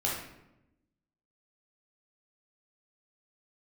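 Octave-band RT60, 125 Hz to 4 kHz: 1.2 s, 1.3 s, 0.95 s, 0.80 s, 0.75 s, 0.55 s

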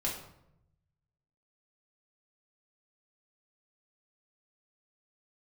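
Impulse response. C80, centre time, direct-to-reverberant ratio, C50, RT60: 8.5 dB, 35 ms, -4.0 dB, 5.0 dB, 0.80 s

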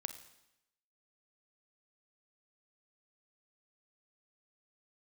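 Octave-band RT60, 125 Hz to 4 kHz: 0.85 s, 0.90 s, 0.85 s, 0.85 s, 0.85 s, 0.85 s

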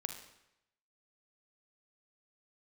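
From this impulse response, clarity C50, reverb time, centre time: 7.0 dB, 0.85 s, 20 ms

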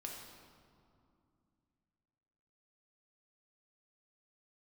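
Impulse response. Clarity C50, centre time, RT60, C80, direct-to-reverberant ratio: 2.0 dB, 73 ms, 2.5 s, 3.5 dB, -1.0 dB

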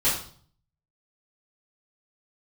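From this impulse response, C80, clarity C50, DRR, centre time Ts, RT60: 9.0 dB, 4.5 dB, -10.0 dB, 39 ms, 0.50 s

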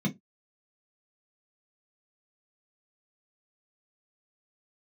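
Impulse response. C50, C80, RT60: 18.5 dB, 31.5 dB, no single decay rate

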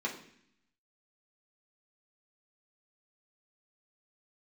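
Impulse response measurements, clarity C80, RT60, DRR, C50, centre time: 12.0 dB, 0.65 s, -3.5 dB, 8.5 dB, 21 ms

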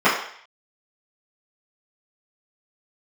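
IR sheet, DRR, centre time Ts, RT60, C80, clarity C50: -14.0 dB, 40 ms, 0.60 s, 8.0 dB, 4.5 dB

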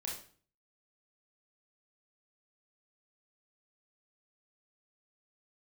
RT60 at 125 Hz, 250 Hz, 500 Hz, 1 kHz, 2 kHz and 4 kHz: 0.65 s, 0.55 s, 0.45 s, 0.45 s, 0.40 s, 0.40 s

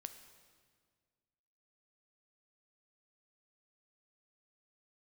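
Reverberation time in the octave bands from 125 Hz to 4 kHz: 2.2 s, 2.1 s, 1.9 s, 1.7 s, 1.6 s, 1.5 s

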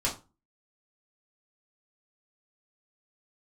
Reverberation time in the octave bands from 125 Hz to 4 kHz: 0.40 s, 0.40 s, 0.30 s, 0.30 s, 0.25 s, 0.20 s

